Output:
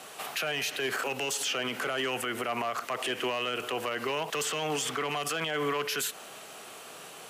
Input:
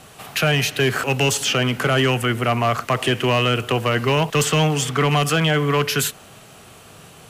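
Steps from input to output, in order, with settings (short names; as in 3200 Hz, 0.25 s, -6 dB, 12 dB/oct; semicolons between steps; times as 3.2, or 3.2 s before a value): HPF 360 Hz 12 dB/oct; compressor, threshold -22 dBFS, peak gain reduction 7 dB; limiter -22 dBFS, peak gain reduction 10 dB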